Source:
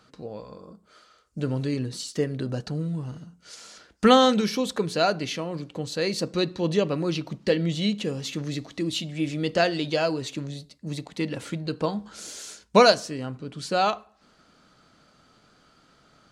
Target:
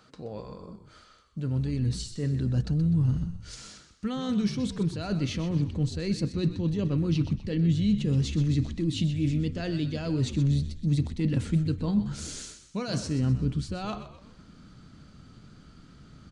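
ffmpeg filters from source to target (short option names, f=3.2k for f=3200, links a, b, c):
-filter_complex "[0:a]aresample=22050,aresample=44100,areverse,acompressor=threshold=-32dB:ratio=10,areverse,asubboost=boost=7:cutoff=230,asplit=2[a][b];[b]asplit=4[c][d][e][f];[c]adelay=126,afreqshift=-64,volume=-11.5dB[g];[d]adelay=252,afreqshift=-128,volume=-19dB[h];[e]adelay=378,afreqshift=-192,volume=-26.6dB[i];[f]adelay=504,afreqshift=-256,volume=-34.1dB[j];[g][h][i][j]amix=inputs=4:normalize=0[k];[a][k]amix=inputs=2:normalize=0"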